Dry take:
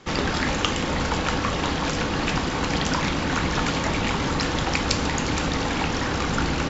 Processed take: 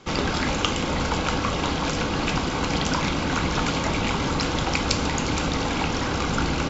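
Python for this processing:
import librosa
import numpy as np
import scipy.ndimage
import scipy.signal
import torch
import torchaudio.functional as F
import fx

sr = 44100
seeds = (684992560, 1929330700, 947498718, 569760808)

y = fx.notch(x, sr, hz=1800.0, q=8.3)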